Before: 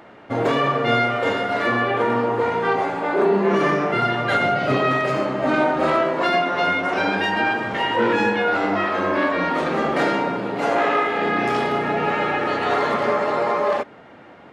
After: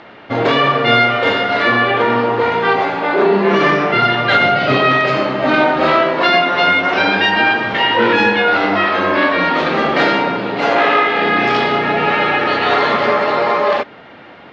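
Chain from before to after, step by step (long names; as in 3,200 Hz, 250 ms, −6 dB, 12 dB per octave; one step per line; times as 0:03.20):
low-pass filter 4,500 Hz 24 dB per octave
high-shelf EQ 2,400 Hz +11.5 dB
level +4.5 dB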